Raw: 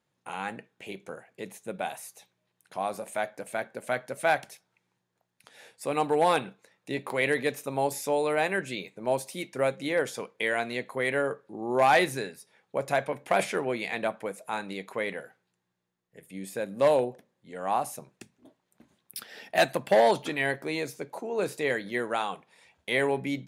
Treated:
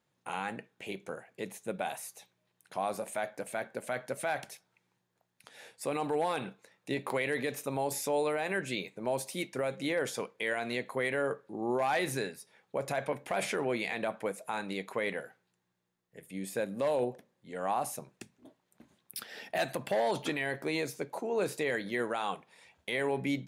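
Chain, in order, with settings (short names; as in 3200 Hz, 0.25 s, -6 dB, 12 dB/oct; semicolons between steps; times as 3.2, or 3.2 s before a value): limiter -21.5 dBFS, peak gain reduction 9.5 dB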